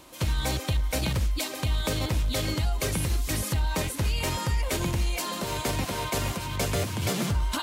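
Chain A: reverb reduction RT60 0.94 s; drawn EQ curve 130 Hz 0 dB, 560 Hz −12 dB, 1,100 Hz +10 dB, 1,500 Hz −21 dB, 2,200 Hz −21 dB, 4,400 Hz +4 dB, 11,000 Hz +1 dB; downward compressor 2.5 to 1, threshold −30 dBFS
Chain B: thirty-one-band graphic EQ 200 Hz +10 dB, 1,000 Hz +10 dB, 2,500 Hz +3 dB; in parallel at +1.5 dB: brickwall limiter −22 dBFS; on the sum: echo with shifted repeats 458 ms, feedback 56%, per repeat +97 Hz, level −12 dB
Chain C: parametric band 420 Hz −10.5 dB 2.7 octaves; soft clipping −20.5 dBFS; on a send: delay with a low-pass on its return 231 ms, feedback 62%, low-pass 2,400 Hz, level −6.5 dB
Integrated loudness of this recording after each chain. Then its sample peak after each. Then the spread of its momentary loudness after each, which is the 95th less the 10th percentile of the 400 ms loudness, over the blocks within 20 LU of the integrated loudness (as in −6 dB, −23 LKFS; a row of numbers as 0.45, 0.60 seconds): −33.0, −21.5, −31.0 LKFS; −18.0, −8.5, −19.0 dBFS; 2, 1, 2 LU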